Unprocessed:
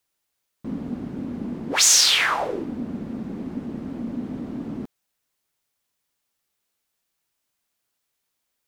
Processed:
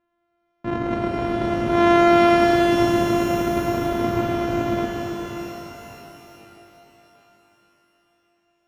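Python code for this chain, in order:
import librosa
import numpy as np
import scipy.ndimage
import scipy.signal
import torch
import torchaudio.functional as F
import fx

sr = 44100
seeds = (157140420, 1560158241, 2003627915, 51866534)

p1 = np.r_[np.sort(x[:len(x) // 128 * 128].reshape(-1, 128), axis=1).ravel(), x[len(x) // 128 * 128:]]
p2 = fx.over_compress(p1, sr, threshold_db=-22.0, ratio=-1.0)
p3 = p1 + (p2 * librosa.db_to_amplitude(0.0))
p4 = scipy.signal.sosfilt(scipy.signal.butter(2, 1800.0, 'lowpass', fs=sr, output='sos'), p3)
p5 = fx.rev_shimmer(p4, sr, seeds[0], rt60_s=3.8, semitones=12, shimmer_db=-8, drr_db=-1.0)
y = p5 * librosa.db_to_amplitude(-3.0)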